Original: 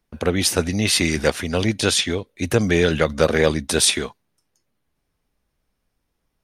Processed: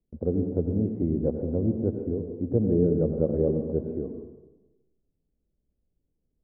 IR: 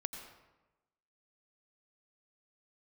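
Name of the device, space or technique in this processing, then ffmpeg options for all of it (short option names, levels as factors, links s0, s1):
next room: -filter_complex "[0:a]lowpass=f=500:w=0.5412,lowpass=f=500:w=1.3066[s0];[1:a]atrim=start_sample=2205[s1];[s0][s1]afir=irnorm=-1:irlink=0,volume=0.708"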